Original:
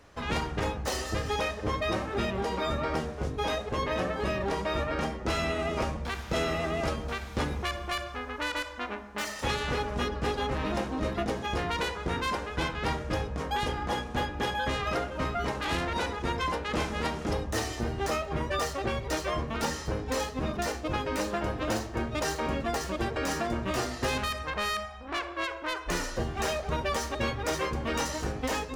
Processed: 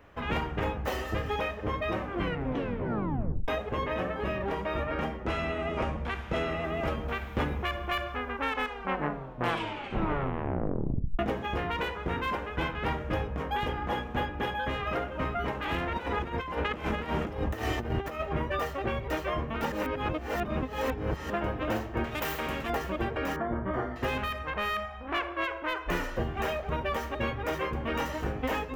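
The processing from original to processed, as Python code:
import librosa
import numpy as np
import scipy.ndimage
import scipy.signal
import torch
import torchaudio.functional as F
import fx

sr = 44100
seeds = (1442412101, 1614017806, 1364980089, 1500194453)

y = fx.lowpass(x, sr, hz=11000.0, slope=24, at=(5.24, 6.64))
y = fx.over_compress(y, sr, threshold_db=-34.0, ratio=-0.5, at=(15.97, 18.19), fade=0.02)
y = fx.spectral_comp(y, sr, ratio=2.0, at=(22.04, 22.7))
y = fx.savgol(y, sr, points=41, at=(23.36, 23.96))
y = fx.edit(y, sr, fx.tape_stop(start_s=1.98, length_s=1.5),
    fx.tape_stop(start_s=8.2, length_s=2.99),
    fx.reverse_span(start_s=19.72, length_s=1.58), tone=tone)
y = fx.band_shelf(y, sr, hz=6500.0, db=-13.5, octaves=1.7)
y = fx.rider(y, sr, range_db=10, speed_s=0.5)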